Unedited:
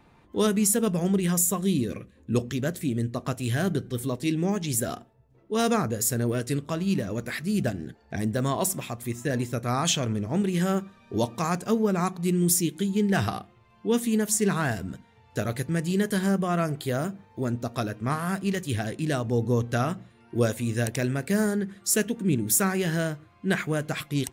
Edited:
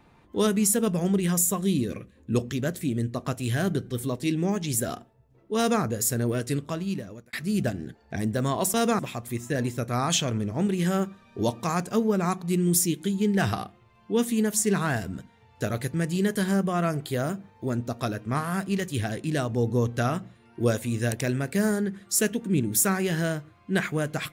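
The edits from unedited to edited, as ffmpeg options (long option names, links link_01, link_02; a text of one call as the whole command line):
ffmpeg -i in.wav -filter_complex "[0:a]asplit=4[link_01][link_02][link_03][link_04];[link_01]atrim=end=7.33,asetpts=PTS-STARTPTS,afade=type=out:start_time=6.62:duration=0.71[link_05];[link_02]atrim=start=7.33:end=8.742,asetpts=PTS-STARTPTS,afade=type=in:duration=0.004:curve=hsin[link_06];[link_03]atrim=start=5.568:end=5.822[link_07];[link_04]atrim=start=8.738[link_08];[link_05][link_06]concat=n=2:v=0:a=1[link_09];[link_09][link_07]acrossfade=duration=0.004:curve1=hsin:curve2=hsin[link_10];[link_10][link_08]acrossfade=duration=0.004:curve1=hsin:curve2=hsin" out.wav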